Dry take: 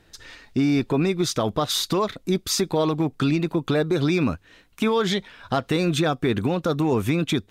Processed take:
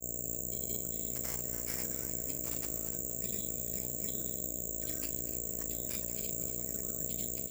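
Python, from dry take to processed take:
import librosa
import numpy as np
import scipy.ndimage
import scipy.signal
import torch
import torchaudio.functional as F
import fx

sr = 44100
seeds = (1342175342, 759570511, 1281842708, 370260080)

y = fx.pitch_heads(x, sr, semitones=6.0)
y = fx.dereverb_blind(y, sr, rt60_s=0.7)
y = fx.tone_stack(y, sr, knobs='6-0-2')
y = fx.level_steps(y, sr, step_db=11)
y = fx.dmg_buzz(y, sr, base_hz=60.0, harmonics=11, level_db=-42.0, tilt_db=-2, odd_only=False)
y = fx.granulator(y, sr, seeds[0], grain_ms=100.0, per_s=20.0, spray_ms=100.0, spread_st=0)
y = fx.doubler(y, sr, ms=40.0, db=-12)
y = fx.echo_wet_highpass(y, sr, ms=240, feedback_pct=48, hz=3400.0, wet_db=-11.5)
y = (np.kron(y[::6], np.eye(6)[0]) * 6)[:len(y)]
y = fx.echo_crushed(y, sr, ms=293, feedback_pct=35, bits=8, wet_db=-13.0)
y = y * 10.0 ** (-3.0 / 20.0)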